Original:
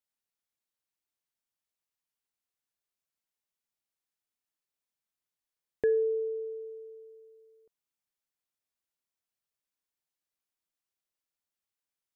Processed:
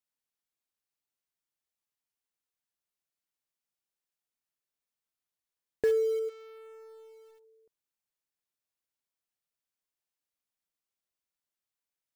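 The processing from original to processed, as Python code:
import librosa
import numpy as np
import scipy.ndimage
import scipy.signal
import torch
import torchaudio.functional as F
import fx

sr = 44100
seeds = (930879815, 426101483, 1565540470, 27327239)

p1 = fx.tube_stage(x, sr, drive_db=49.0, bias=0.4, at=(6.28, 7.43), fade=0.02)
p2 = fx.quant_companded(p1, sr, bits=4)
p3 = p1 + F.gain(torch.from_numpy(p2), -10.5).numpy()
y = F.gain(torch.from_numpy(p3), -2.0).numpy()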